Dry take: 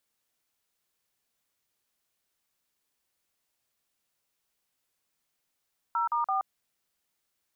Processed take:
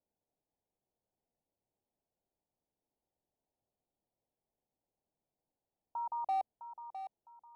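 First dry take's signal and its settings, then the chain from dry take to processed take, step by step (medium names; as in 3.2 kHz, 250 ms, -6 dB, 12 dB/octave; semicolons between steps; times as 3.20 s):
DTMF "0*4", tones 125 ms, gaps 43 ms, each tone -27.5 dBFS
steep low-pass 870 Hz 48 dB/octave; hard clipper -29 dBFS; on a send: thinning echo 658 ms, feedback 35%, high-pass 530 Hz, level -9 dB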